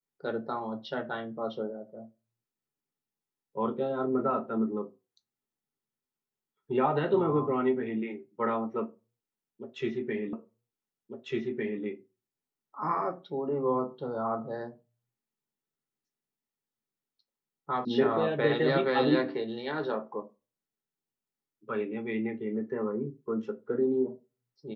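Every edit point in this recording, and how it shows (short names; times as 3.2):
10.33 repeat of the last 1.5 s
17.85 sound cut off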